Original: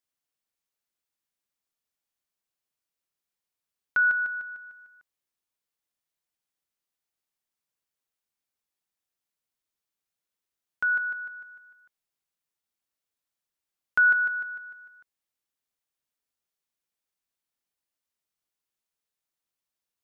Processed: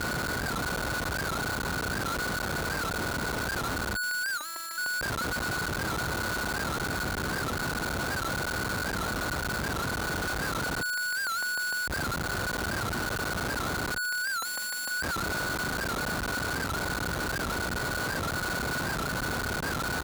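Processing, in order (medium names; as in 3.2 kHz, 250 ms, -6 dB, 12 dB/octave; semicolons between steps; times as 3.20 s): spectral levelling over time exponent 0.2; low-pass 1.2 kHz 24 dB/octave; on a send: feedback delay 348 ms, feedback 43%, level -12.5 dB; on the sum: Schmitt trigger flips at -44 dBFS; high-pass 44 Hz; 4.38–4.78 s: robot voice 331 Hz; 14.40–14.91 s: comb 3.7 ms, depth 61%; warped record 78 rpm, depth 160 cents; trim +7 dB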